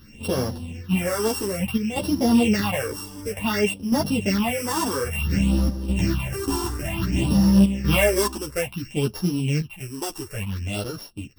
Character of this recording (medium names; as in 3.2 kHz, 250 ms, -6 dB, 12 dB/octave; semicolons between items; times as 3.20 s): a buzz of ramps at a fixed pitch in blocks of 16 samples; phasing stages 6, 0.57 Hz, lowest notch 150–2500 Hz; chopped level 0.51 Hz, depth 65%, duty 90%; a shimmering, thickened sound